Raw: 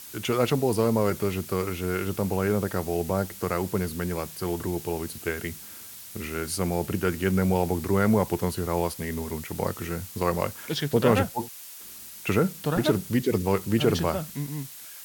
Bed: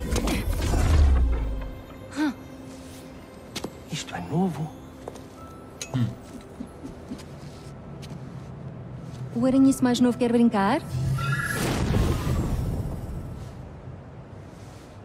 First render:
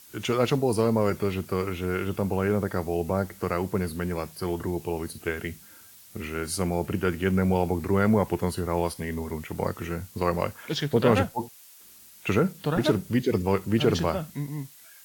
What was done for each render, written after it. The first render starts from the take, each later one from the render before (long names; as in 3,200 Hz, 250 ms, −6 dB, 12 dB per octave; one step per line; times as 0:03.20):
noise reduction from a noise print 8 dB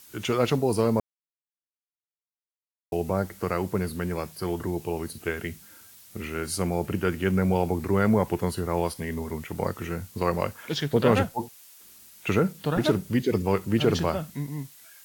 0:01.00–0:02.92: silence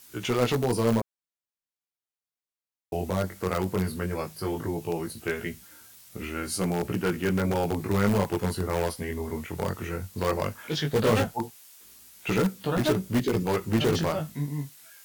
chorus effect 0.16 Hz, delay 16 ms, depth 6 ms
in parallel at −8.5 dB: wrap-around overflow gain 20 dB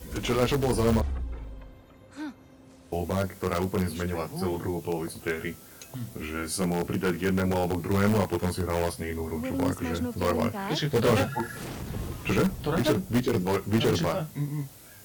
mix in bed −11.5 dB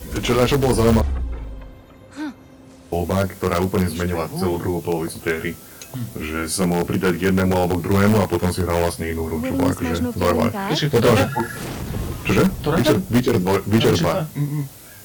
level +8 dB
brickwall limiter −3 dBFS, peak gain reduction 1.5 dB